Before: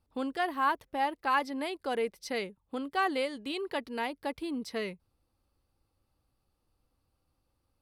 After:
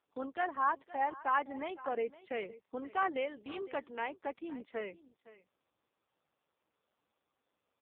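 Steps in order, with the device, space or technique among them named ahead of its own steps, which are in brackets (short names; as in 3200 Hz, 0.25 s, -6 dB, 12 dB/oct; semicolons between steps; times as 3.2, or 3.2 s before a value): spectral gate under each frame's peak -30 dB strong; 1.1–3.21 dynamic EQ 190 Hz, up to +4 dB, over -49 dBFS, Q 1.8; satellite phone (BPF 360–3000 Hz; echo 0.512 s -18 dB; gain -2 dB; AMR-NB 5.15 kbps 8000 Hz)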